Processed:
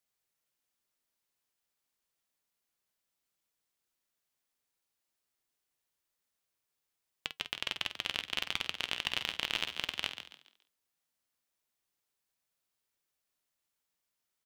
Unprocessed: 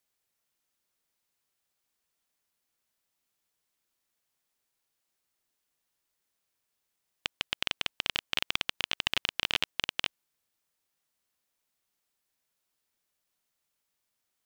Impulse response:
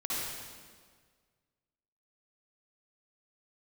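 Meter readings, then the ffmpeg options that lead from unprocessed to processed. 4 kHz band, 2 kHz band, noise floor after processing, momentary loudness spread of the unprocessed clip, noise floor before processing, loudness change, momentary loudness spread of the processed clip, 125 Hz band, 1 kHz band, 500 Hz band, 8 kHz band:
-3.5 dB, -3.5 dB, -85 dBFS, 7 LU, -82 dBFS, -3.5 dB, 9 LU, -4.0 dB, -3.5 dB, -3.5 dB, -3.5 dB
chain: -filter_complex "[0:a]flanger=delay=1.4:depth=5.5:regen=-82:speed=0.16:shape=triangular,asplit=2[s0][s1];[s1]adelay=49,volume=0.316[s2];[s0][s2]amix=inputs=2:normalize=0,asplit=5[s3][s4][s5][s6][s7];[s4]adelay=140,afreqshift=68,volume=0.316[s8];[s5]adelay=280,afreqshift=136,volume=0.107[s9];[s6]adelay=420,afreqshift=204,volume=0.0367[s10];[s7]adelay=560,afreqshift=272,volume=0.0124[s11];[s3][s8][s9][s10][s11]amix=inputs=5:normalize=0"

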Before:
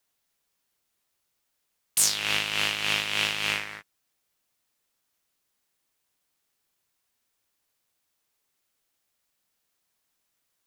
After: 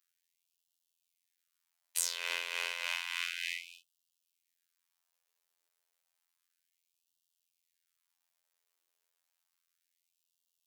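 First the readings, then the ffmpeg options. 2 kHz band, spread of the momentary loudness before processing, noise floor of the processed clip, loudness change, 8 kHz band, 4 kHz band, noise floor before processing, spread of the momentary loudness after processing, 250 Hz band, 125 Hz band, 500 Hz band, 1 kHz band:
-9.0 dB, 7 LU, -85 dBFS, -10.5 dB, -11.0 dB, -11.5 dB, -78 dBFS, 5 LU, under -30 dB, under -40 dB, -11.5 dB, -11.5 dB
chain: -af "afreqshift=-210,acompressor=threshold=0.0398:ratio=2,afftfilt=real='hypot(re,im)*cos(PI*b)':imag='0':win_size=2048:overlap=0.75,afftfilt=real='re*gte(b*sr/1024,340*pow(2700/340,0.5+0.5*sin(2*PI*0.31*pts/sr)))':imag='im*gte(b*sr/1024,340*pow(2700/340,0.5+0.5*sin(2*PI*0.31*pts/sr)))':win_size=1024:overlap=0.75,volume=0.75"

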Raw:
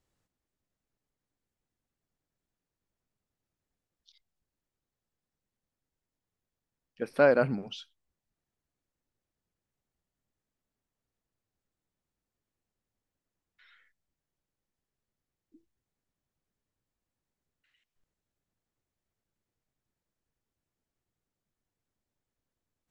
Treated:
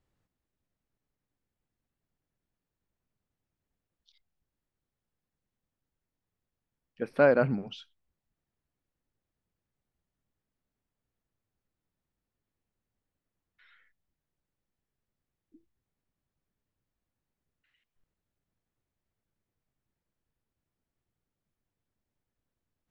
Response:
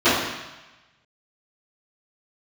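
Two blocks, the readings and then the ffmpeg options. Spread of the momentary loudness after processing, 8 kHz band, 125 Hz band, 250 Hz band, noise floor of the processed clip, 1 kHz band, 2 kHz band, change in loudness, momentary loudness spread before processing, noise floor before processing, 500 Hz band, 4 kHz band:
17 LU, no reading, +2.5 dB, +1.5 dB, under -85 dBFS, 0.0 dB, 0.0 dB, +0.5 dB, 20 LU, under -85 dBFS, 0.0 dB, -2.5 dB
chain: -af "bass=f=250:g=3,treble=f=4000:g=-8"

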